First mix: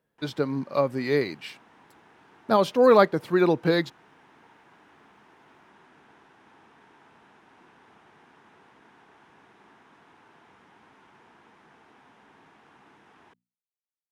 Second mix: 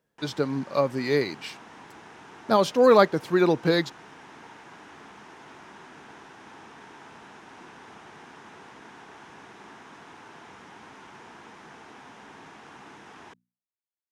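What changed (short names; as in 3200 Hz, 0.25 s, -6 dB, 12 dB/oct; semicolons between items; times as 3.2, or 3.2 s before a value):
background +9.0 dB; master: add bell 6300 Hz +7 dB 1 oct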